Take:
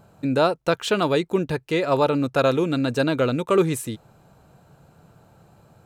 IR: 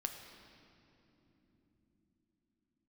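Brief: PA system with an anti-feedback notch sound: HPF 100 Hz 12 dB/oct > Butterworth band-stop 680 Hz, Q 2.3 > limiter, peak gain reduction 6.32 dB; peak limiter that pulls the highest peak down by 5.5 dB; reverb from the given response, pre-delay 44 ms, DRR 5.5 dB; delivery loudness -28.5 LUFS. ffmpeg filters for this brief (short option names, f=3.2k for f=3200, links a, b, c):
-filter_complex "[0:a]alimiter=limit=-13dB:level=0:latency=1,asplit=2[a][b];[1:a]atrim=start_sample=2205,adelay=44[c];[b][c]afir=irnorm=-1:irlink=0,volume=-5dB[d];[a][d]amix=inputs=2:normalize=0,highpass=100,asuperstop=centerf=680:order=8:qfactor=2.3,volume=-3dB,alimiter=limit=-18.5dB:level=0:latency=1"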